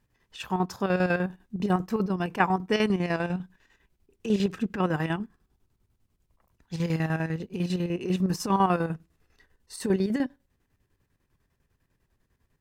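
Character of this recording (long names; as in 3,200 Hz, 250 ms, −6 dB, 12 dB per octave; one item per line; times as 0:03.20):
chopped level 10 Hz, depth 60%, duty 60%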